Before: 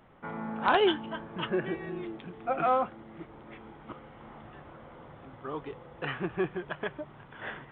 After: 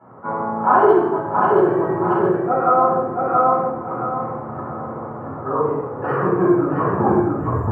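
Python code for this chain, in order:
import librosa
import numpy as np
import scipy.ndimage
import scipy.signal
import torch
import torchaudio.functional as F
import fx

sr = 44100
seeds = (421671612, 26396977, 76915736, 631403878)

p1 = fx.tape_stop_end(x, sr, length_s=1.38)
p2 = fx.room_shoebox(p1, sr, seeds[0], volume_m3=330.0, walls='mixed', distance_m=7.6)
p3 = (np.kron(scipy.signal.resample_poly(p2, 1, 6), np.eye(6)[0]) * 6)[:len(p2)]
p4 = scipy.signal.sosfilt(scipy.signal.ellip(3, 1.0, 60, [110.0, 1300.0], 'bandpass', fs=sr, output='sos'), p3)
p5 = fx.peak_eq(p4, sr, hz=240.0, db=-4.5, octaves=1.2)
p6 = p5 + fx.echo_feedback(p5, sr, ms=676, feedback_pct=29, wet_db=-4, dry=0)
p7 = fx.rider(p6, sr, range_db=3, speed_s=0.5)
y = F.gain(torch.from_numpy(p7), -1.0).numpy()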